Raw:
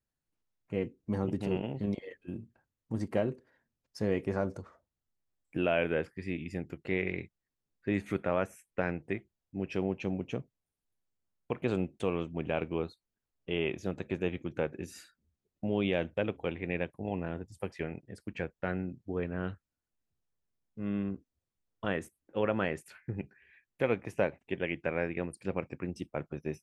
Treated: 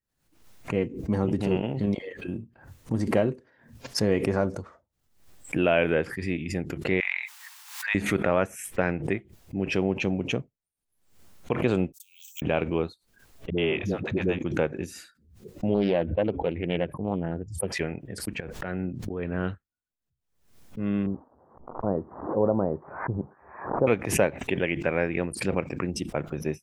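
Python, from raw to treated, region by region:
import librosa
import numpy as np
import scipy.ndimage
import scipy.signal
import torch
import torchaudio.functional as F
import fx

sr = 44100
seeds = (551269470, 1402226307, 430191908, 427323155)

y = fx.chain(x, sr, fx.ellip_highpass(hz=890.0, order=4, stop_db=60),
    fx.sustainer(db_per_s=36.0), at=(7.0, 7.95))
y = fx.chain(y, sr, fx.cheby2_highpass(hz=1000.0, order=4, stop_db=80),
    fx.resample_bad(factor=2, down='filtered', up='zero_stuff'), at=(11.92, 12.42))
y = fx.chain(y, sr, fx.peak_eq(hz=8200.0, db=-11.0, octaves=0.71),
    fx.dispersion(late='highs', ms=74.0, hz=350.0), at=(13.5, 14.39))
y = fx.chain(y, sr, fx.spec_expand(power=1.5),
    fx.doppler_dist(depth_ms=0.36), at=(15.74, 17.68))
y = fx.chain(y, sr, fx.high_shelf(hz=8100.0, db=-11.0),
    fx.auto_swell(attack_ms=220.0),
    fx.pre_swell(db_per_s=24.0), at=(18.4, 19.33))
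y = fx.chain(y, sr, fx.crossing_spikes(level_db=-27.5),
    fx.steep_lowpass(hz=1000.0, slope=36), at=(21.06, 23.87))
y = fx.noise_reduce_blind(y, sr, reduce_db=15)
y = fx.pre_swell(y, sr, db_per_s=90.0)
y = y * librosa.db_to_amplitude(6.5)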